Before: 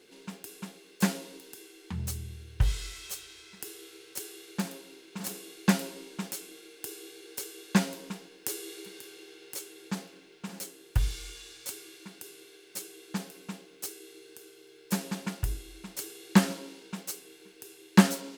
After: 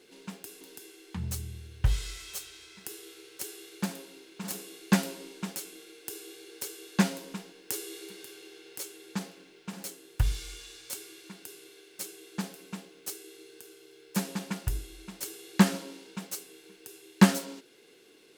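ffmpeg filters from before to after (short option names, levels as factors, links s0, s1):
-filter_complex "[0:a]asplit=2[s0][s1];[s0]atrim=end=0.612[s2];[s1]atrim=start=1.368[s3];[s2][s3]acrossfade=d=0.004:c1=hsin:c2=hsin"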